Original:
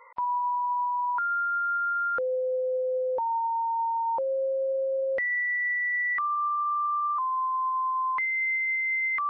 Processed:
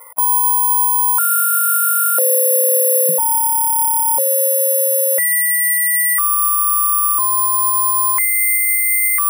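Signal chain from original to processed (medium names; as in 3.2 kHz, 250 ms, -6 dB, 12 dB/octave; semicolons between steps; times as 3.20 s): peaking EQ 670 Hz +15 dB 0.23 oct, from 3.09 s 170 Hz, from 4.89 s 71 Hz; careless resampling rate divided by 4×, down filtered, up zero stuff; trim +6 dB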